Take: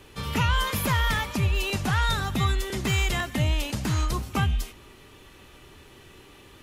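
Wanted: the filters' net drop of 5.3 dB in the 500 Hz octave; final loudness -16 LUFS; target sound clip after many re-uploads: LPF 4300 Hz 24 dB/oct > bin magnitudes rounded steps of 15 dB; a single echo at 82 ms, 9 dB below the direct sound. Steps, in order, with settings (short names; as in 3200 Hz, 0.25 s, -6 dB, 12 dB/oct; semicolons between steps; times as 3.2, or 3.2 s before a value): LPF 4300 Hz 24 dB/oct; bell 500 Hz -7.5 dB; echo 82 ms -9 dB; bin magnitudes rounded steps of 15 dB; gain +10.5 dB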